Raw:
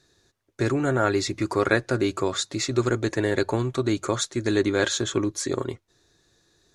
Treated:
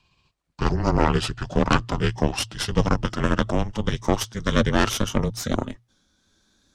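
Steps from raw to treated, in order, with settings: gliding pitch shift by -6.5 st ending unshifted; added harmonics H 6 -9 dB, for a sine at -5 dBFS; frequency shift -120 Hz

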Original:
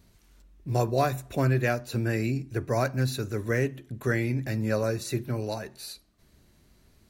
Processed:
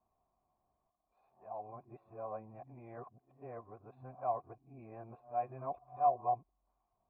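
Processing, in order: whole clip reversed; vocal tract filter a; gain +1 dB

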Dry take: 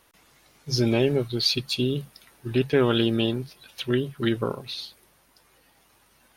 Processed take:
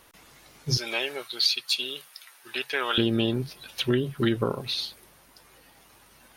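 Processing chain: 0.77–2.98 HPF 1100 Hz 12 dB/oct; compressor 2.5:1, threshold -27 dBFS, peak gain reduction 6.5 dB; gain +5 dB

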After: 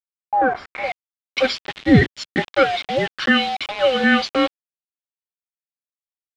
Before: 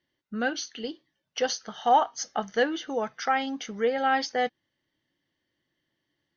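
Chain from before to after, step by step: band inversion scrambler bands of 1000 Hz; notch 890 Hz, Q 12; requantised 6-bit, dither none; low-pass sweep 880 Hz -> 3200 Hz, 0.37–1.03; 1.79–2.28 three-band expander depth 70%; gain +7.5 dB

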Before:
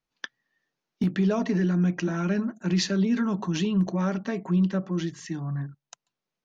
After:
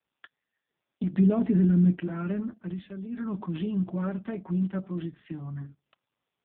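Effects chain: 1.13–1.96 low shelf 310 Hz +9.5 dB; 2.52–3.36 dip -9 dB, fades 0.27 s; gain -4 dB; AMR-NB 5.15 kbps 8000 Hz

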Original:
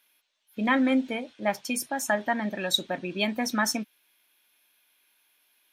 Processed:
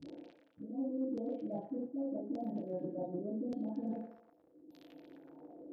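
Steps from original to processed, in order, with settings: spectral delay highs late, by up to 0.641 s; bell 230 Hz +13 dB 2.3 oct; upward compressor, threshold -27 dBFS; inverse Chebyshev band-stop 1100–10000 Hz, stop band 40 dB; low shelf 340 Hz -5 dB; FDN reverb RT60 0.69 s, low-frequency decay 0.7×, high-frequency decay 0.95×, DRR -6.5 dB; crackle 42/s -42 dBFS; LFO low-pass saw down 0.85 Hz 320–5000 Hz; reverse; compressor 8:1, threshold -34 dBFS, peak gain reduction 27 dB; reverse; HPF 55 Hz; delay with a stepping band-pass 0.115 s, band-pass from 1600 Hz, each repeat 1.4 oct, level -5 dB; gain -2.5 dB

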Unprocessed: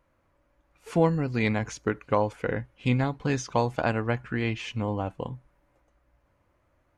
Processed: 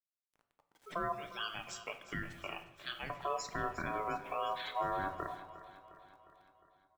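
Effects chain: 1.12–3.1 HPF 1200 Hz 12 dB/oct; spectral gate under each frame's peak -15 dB strong; limiter -22.5 dBFS, peak gain reduction 11.5 dB; requantised 10-bit, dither none; ring modulator 860 Hz; feedback echo 0.356 s, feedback 57%, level -15 dB; shoebox room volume 220 m³, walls mixed, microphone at 0.43 m; gain -3 dB

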